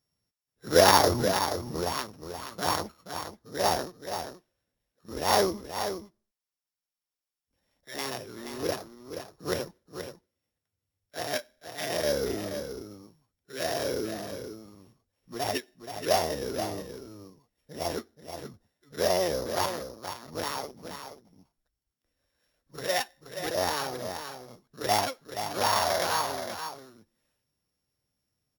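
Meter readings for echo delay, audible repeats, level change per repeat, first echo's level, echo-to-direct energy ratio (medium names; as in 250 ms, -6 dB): 477 ms, 1, no regular repeats, -8.5 dB, -8.5 dB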